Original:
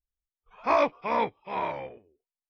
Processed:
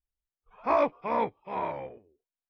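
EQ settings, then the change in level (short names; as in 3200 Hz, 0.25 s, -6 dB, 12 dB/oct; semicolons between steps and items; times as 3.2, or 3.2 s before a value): high shelf 2300 Hz -12 dB; 0.0 dB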